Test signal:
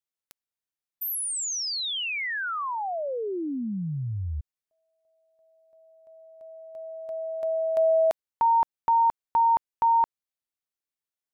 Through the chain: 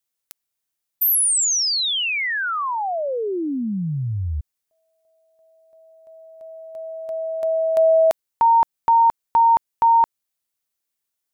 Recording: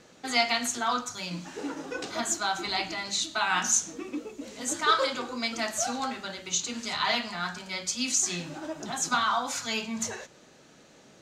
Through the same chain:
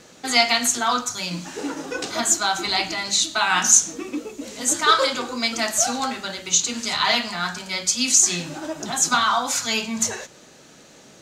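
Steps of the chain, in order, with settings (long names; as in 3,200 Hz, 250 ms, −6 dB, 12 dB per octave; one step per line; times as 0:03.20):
high-shelf EQ 5,600 Hz +7.5 dB
level +6 dB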